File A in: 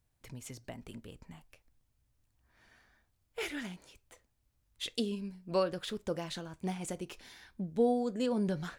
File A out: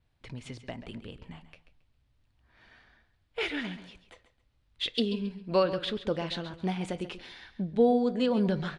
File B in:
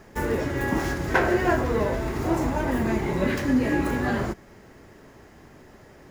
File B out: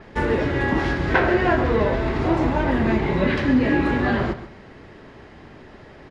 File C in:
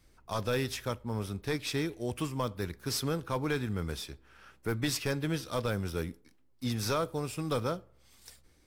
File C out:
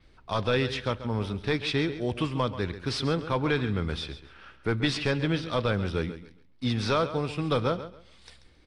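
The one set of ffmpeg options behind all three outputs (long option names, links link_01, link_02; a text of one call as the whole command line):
ffmpeg -i in.wav -filter_complex "[0:a]aresample=22050,aresample=44100,asplit=2[link_01][link_02];[link_02]alimiter=limit=-17.5dB:level=0:latency=1:release=343,volume=-2dB[link_03];[link_01][link_03]amix=inputs=2:normalize=0,highshelf=frequency=5200:width_type=q:width=1.5:gain=-10.5,aecho=1:1:136|272|408:0.224|0.0515|0.0118,adynamicequalizer=threshold=0.00501:dfrequency=6900:dqfactor=0.7:tfrequency=6900:tqfactor=0.7:attack=5:release=100:ratio=0.375:range=2.5:mode=cutabove:tftype=highshelf" out.wav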